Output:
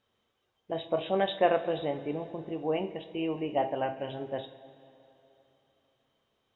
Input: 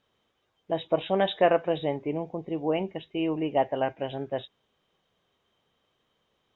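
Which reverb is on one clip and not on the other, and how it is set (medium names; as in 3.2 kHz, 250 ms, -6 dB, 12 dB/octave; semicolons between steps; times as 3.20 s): two-slope reverb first 0.39 s, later 3.3 s, from -16 dB, DRR 6.5 dB; trim -4 dB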